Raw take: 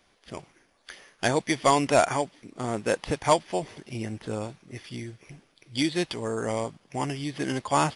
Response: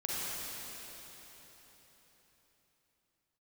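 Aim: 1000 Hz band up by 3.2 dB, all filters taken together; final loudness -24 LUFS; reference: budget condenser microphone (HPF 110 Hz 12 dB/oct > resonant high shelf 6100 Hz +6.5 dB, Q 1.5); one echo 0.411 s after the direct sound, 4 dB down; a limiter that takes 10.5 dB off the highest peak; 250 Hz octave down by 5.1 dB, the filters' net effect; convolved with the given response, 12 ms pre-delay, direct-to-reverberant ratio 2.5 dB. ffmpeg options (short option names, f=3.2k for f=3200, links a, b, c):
-filter_complex "[0:a]equalizer=f=250:t=o:g=-7,equalizer=f=1k:t=o:g=4.5,alimiter=limit=-16dB:level=0:latency=1,aecho=1:1:411:0.631,asplit=2[a][b];[1:a]atrim=start_sample=2205,adelay=12[c];[b][c]afir=irnorm=-1:irlink=0,volume=-8.5dB[d];[a][d]amix=inputs=2:normalize=0,highpass=110,highshelf=f=6.1k:t=q:w=1.5:g=6.5,volume=4dB"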